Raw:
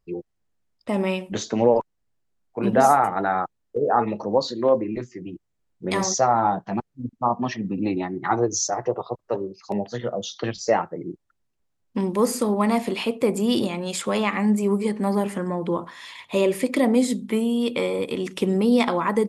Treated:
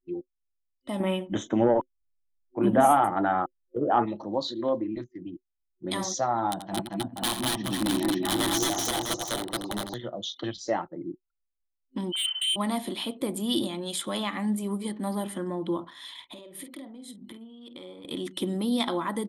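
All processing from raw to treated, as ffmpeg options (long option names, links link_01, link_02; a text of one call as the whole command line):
ffmpeg -i in.wav -filter_complex "[0:a]asettb=1/sr,asplit=3[link_01][link_02][link_03];[link_01]atrim=end=1.004[link_04];[link_02]atrim=start=1:end=4.06,asetpts=PTS-STARTPTS,afade=type=in:duration=0.004:curve=qsin,afade=type=out:start_time=3.056:duration=0.004:curve=qsin,highshelf=frequency=3000:gain=-6,acontrast=46,asuperstop=centerf=4500:order=4:qfactor=1.4[link_05];[link_03]atrim=start=4.056[link_06];[link_04][link_05]acrossfade=duration=0.004:curve1=hsin:curve2=qsin[link_07];[link_07][link_06]acrossfade=duration=0.004:curve1=qsin:curve2=hsin,asettb=1/sr,asplit=3[link_08][link_09][link_10];[link_08]atrim=end=6.514[link_11];[link_09]atrim=start=6.51:end=9.94,asetpts=PTS-STARTPTS,afade=type=in:duration=0.004:curve=qsin,afade=type=out:start_time=3.426:duration=0.004:curve=qsin,aeval=exprs='(mod(6.31*val(0)+1,2)-1)/6.31':channel_layout=same,aecho=1:1:85|224|230|406|494|650:0.355|0.708|0.631|0.112|0.422|0.447,atrim=end_sample=151263[link_12];[link_10]atrim=start=9.936[link_13];[link_11][link_12]acrossfade=duration=0.004:curve1=hsin:curve2=qsin[link_14];[link_14][link_13]acrossfade=duration=0.004:curve1=qsin:curve2=hsin,asettb=1/sr,asplit=3[link_15][link_16][link_17];[link_15]atrim=end=12.124[link_18];[link_16]atrim=start=12.12:end=12.56,asetpts=PTS-STARTPTS,afade=type=in:duration=0.004:curve=qsin,afade=type=out:start_time=0.436:duration=0.004:curve=qsin,lowpass=frequency=2800:width_type=q:width=0.5098,lowpass=frequency=2800:width_type=q:width=0.6013,lowpass=frequency=2800:width_type=q:width=0.9,lowpass=frequency=2800:width_type=q:width=2.563,afreqshift=-3300,highpass=680,asoftclip=type=hard:threshold=-23dB[link_19];[link_17]atrim=start=12.556[link_20];[link_18][link_19]acrossfade=duration=0.004:curve1=hsin:curve2=qsin[link_21];[link_21][link_20]acrossfade=duration=0.004:curve1=qsin:curve2=hsin,asettb=1/sr,asplit=3[link_22][link_23][link_24];[link_22]atrim=end=16.134[link_25];[link_23]atrim=start=16.13:end=18.05,asetpts=PTS-STARTPTS,afade=type=in:duration=0.004:curve=qsin,afade=type=out:start_time=1.916:duration=0.004:curve=qsin,acompressor=threshold=-34dB:ratio=12:attack=3.2:release=140:knee=1:detection=peak,asplit=2[link_26][link_27];[link_27]adelay=49,volume=-8.5dB[link_28];[link_26][link_28]amix=inputs=2:normalize=0,atrim=end_sample=84672[link_29];[link_24]atrim=start=18.046[link_30];[link_25][link_29]acrossfade=duration=0.004:curve1=hsin:curve2=qsin[link_31];[link_31][link_30]acrossfade=duration=0.004:curve1=qsin:curve2=hsin,anlmdn=0.0398,superequalizer=6b=2:7b=0.501:12b=0.631:13b=2.82:16b=3.16,volume=-7.5dB" out.wav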